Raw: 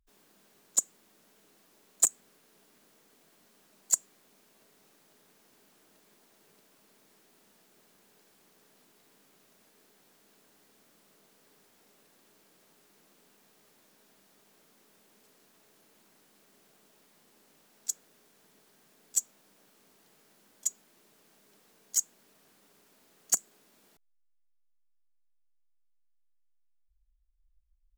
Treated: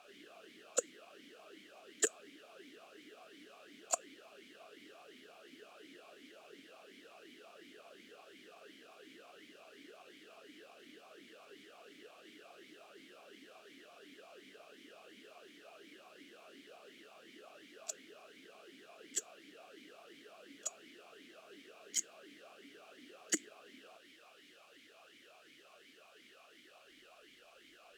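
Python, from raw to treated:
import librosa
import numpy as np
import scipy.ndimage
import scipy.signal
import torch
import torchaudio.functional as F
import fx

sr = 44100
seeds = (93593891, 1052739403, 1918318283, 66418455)

y = fx.quant_dither(x, sr, seeds[0], bits=10, dither='triangular')
y = fx.vowel_sweep(y, sr, vowels='a-i', hz=2.8)
y = y * 10.0 ** (18.0 / 20.0)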